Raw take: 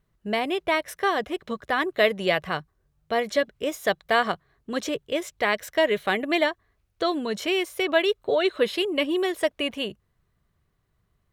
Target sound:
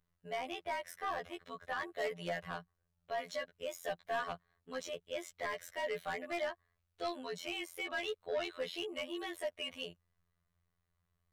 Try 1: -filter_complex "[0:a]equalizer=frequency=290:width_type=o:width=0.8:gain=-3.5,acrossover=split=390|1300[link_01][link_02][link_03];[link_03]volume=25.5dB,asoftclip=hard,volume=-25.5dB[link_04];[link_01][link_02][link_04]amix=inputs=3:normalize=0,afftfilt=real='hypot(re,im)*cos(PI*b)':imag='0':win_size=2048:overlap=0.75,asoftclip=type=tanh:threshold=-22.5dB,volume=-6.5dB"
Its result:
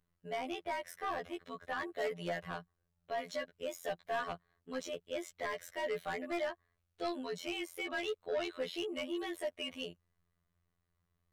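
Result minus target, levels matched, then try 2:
250 Hz band +4.0 dB
-filter_complex "[0:a]equalizer=frequency=290:width_type=o:width=0.8:gain=-11,acrossover=split=390|1300[link_01][link_02][link_03];[link_03]volume=25.5dB,asoftclip=hard,volume=-25.5dB[link_04];[link_01][link_02][link_04]amix=inputs=3:normalize=0,afftfilt=real='hypot(re,im)*cos(PI*b)':imag='0':win_size=2048:overlap=0.75,asoftclip=type=tanh:threshold=-22.5dB,volume=-6.5dB"

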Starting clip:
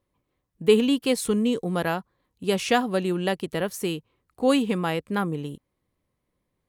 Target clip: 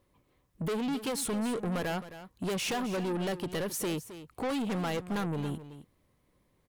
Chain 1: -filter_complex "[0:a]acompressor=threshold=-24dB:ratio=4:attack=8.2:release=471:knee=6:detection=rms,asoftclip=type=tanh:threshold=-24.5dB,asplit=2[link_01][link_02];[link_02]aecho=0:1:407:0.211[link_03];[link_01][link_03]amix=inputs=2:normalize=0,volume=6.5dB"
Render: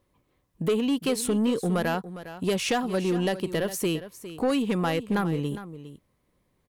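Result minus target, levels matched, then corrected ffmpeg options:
echo 142 ms late; soft clipping: distortion −9 dB
-filter_complex "[0:a]acompressor=threshold=-24dB:ratio=4:attack=8.2:release=471:knee=6:detection=rms,asoftclip=type=tanh:threshold=-36dB,asplit=2[link_01][link_02];[link_02]aecho=0:1:265:0.211[link_03];[link_01][link_03]amix=inputs=2:normalize=0,volume=6.5dB"

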